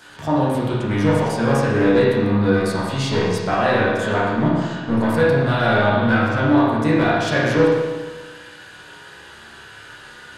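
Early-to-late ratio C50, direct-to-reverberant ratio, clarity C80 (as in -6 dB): -1.5 dB, -9.5 dB, 1.0 dB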